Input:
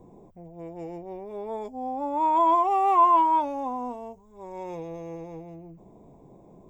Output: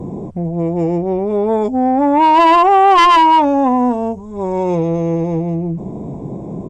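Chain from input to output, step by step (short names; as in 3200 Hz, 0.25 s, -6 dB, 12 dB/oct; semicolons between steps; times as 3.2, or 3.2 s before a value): one-sided fold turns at -17.5 dBFS; bell 160 Hz +10.5 dB 2.9 oct; in parallel at +1 dB: compressor, threshold -34 dBFS, peak gain reduction 18 dB; on the sum: downsampling 22050 Hz; added harmonics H 5 -19 dB, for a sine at -8 dBFS; gain +7 dB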